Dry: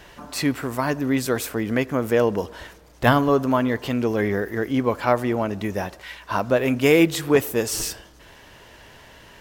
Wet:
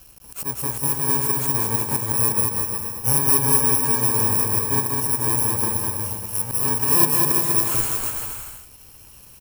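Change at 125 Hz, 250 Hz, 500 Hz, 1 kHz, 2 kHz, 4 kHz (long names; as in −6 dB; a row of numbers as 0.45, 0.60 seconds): +1.0, −8.0, −10.0, −1.0, −6.5, −1.0 decibels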